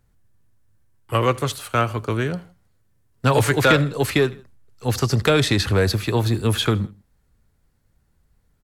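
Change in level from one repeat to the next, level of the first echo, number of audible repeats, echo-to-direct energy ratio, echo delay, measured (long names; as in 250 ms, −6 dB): −6.5 dB, −22.0 dB, 2, −21.0 dB, 80 ms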